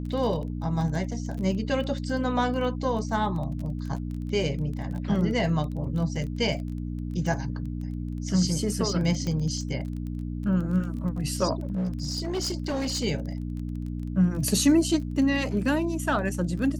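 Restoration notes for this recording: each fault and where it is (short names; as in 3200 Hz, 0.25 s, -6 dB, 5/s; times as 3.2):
crackle 20/s -34 dBFS
hum 60 Hz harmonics 5 -32 dBFS
9.27 pop -19 dBFS
11.6–13.04 clipped -24.5 dBFS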